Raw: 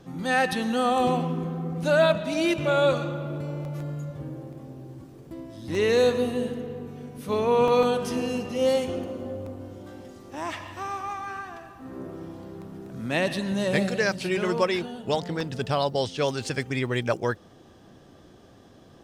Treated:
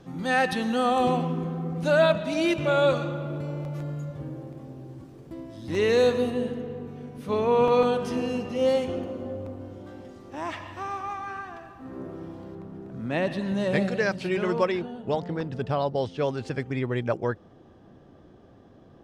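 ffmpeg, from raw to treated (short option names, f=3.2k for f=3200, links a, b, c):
-af "asetnsamples=n=441:p=0,asendcmd='6.3 lowpass f 3400;12.55 lowpass f 1500;13.41 lowpass f 2500;14.72 lowpass f 1200',lowpass=f=6.5k:p=1"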